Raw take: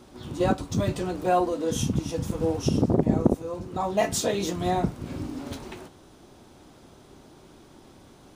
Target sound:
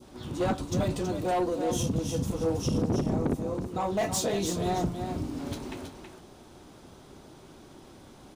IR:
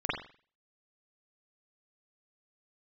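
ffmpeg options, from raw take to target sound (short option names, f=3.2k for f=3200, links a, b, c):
-af "asoftclip=type=tanh:threshold=-21.5dB,aecho=1:1:324:0.422,adynamicequalizer=threshold=0.00501:dfrequency=1700:dqfactor=0.88:tfrequency=1700:tqfactor=0.88:attack=5:release=100:ratio=0.375:range=2.5:mode=cutabove:tftype=bell"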